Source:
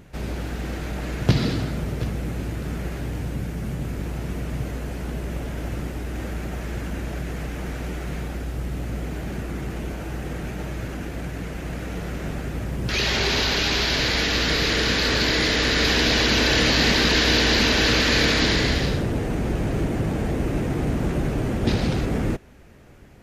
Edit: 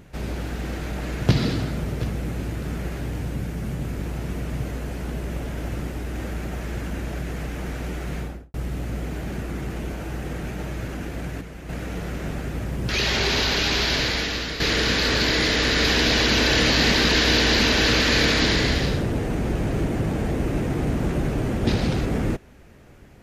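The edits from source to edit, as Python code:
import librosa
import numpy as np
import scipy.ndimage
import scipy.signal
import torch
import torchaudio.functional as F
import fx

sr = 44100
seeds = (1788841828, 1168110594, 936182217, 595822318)

y = fx.studio_fade_out(x, sr, start_s=8.18, length_s=0.36)
y = fx.edit(y, sr, fx.clip_gain(start_s=11.41, length_s=0.28, db=-6.5),
    fx.fade_out_to(start_s=13.94, length_s=0.66, floor_db=-10.5), tone=tone)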